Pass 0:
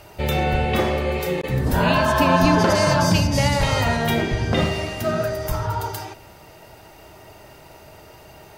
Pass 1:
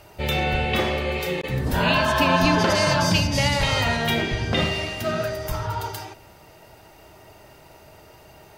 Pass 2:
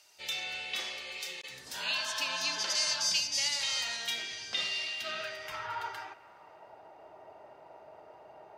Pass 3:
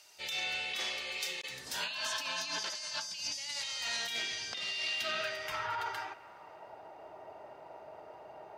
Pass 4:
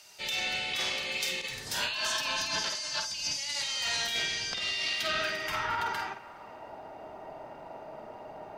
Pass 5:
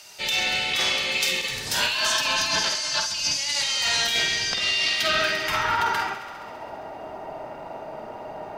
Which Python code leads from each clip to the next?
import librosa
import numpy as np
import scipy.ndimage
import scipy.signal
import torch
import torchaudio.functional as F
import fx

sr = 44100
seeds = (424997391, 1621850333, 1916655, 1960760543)

y1 = fx.dynamic_eq(x, sr, hz=3100.0, q=0.79, threshold_db=-39.0, ratio=4.0, max_db=7)
y1 = y1 * librosa.db_to_amplitude(-3.5)
y2 = fx.filter_sweep_bandpass(y1, sr, from_hz=5900.0, to_hz=730.0, start_s=4.46, end_s=6.84, q=1.5)
y3 = fx.over_compress(y2, sr, threshold_db=-37.0, ratio=-1.0)
y4 = fx.octave_divider(y3, sr, octaves=1, level_db=0.0)
y4 = fx.doubler(y4, sr, ms=49.0, db=-7.5)
y4 = y4 * librosa.db_to_amplitude(4.5)
y5 = fx.echo_thinned(y4, sr, ms=67, feedback_pct=82, hz=420.0, wet_db=-14.5)
y5 = y5 * librosa.db_to_amplitude(8.0)